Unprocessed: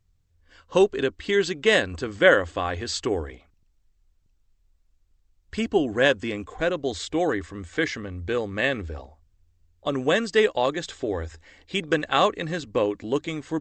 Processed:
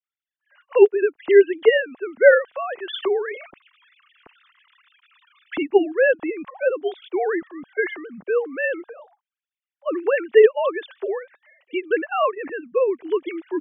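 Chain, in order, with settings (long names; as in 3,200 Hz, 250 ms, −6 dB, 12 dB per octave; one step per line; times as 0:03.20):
three sine waves on the formant tracks
0:02.88–0:05.63: envelope flattener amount 50%
level +4 dB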